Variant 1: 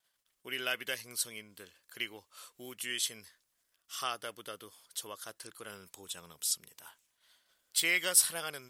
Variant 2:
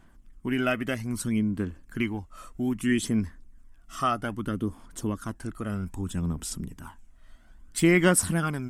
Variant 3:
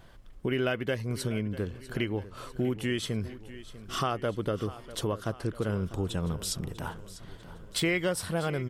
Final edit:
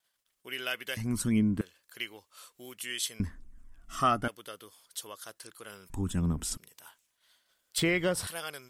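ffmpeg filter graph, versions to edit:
-filter_complex "[1:a]asplit=3[a][b][c];[0:a]asplit=5[d][e][f][g][h];[d]atrim=end=0.972[i];[a]atrim=start=0.968:end=1.612[j];[e]atrim=start=1.608:end=3.202[k];[b]atrim=start=3.198:end=4.282[l];[f]atrim=start=4.278:end=5.902[m];[c]atrim=start=5.898:end=6.572[n];[g]atrim=start=6.568:end=7.782[o];[2:a]atrim=start=7.778:end=8.272[p];[h]atrim=start=8.268[q];[i][j]acrossfade=d=0.004:c1=hsin:c2=hsin[r];[r][k]acrossfade=d=0.004:c1=hsin:c2=hsin[s];[s][l]acrossfade=d=0.004:c1=hsin:c2=hsin[t];[t][m]acrossfade=d=0.004:c1=hsin:c2=hsin[u];[u][n]acrossfade=d=0.004:c1=hsin:c2=hsin[v];[v][o]acrossfade=d=0.004:c1=hsin:c2=hsin[w];[w][p]acrossfade=d=0.004:c1=hsin:c2=hsin[x];[x][q]acrossfade=d=0.004:c1=hsin:c2=hsin"

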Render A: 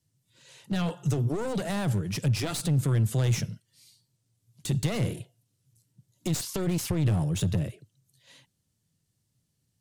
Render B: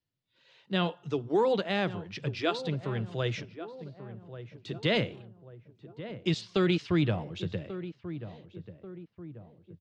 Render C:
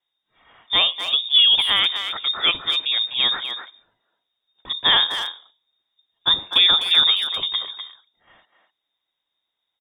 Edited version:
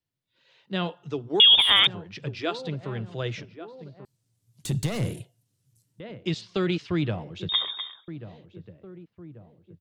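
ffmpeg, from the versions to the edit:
-filter_complex "[2:a]asplit=2[a][b];[1:a]asplit=4[c][d][e][f];[c]atrim=end=1.402[g];[a]atrim=start=1.398:end=1.872[h];[d]atrim=start=1.868:end=4.052[i];[0:a]atrim=start=4.048:end=6.002[j];[e]atrim=start=5.998:end=7.492[k];[b]atrim=start=7.488:end=8.082[l];[f]atrim=start=8.078[m];[g][h]acrossfade=d=0.004:c1=hsin:c2=hsin[n];[n][i]acrossfade=d=0.004:c1=hsin:c2=hsin[o];[o][j]acrossfade=d=0.004:c1=hsin:c2=hsin[p];[p][k]acrossfade=d=0.004:c1=hsin:c2=hsin[q];[q][l]acrossfade=d=0.004:c1=hsin:c2=hsin[r];[r][m]acrossfade=d=0.004:c1=hsin:c2=hsin"

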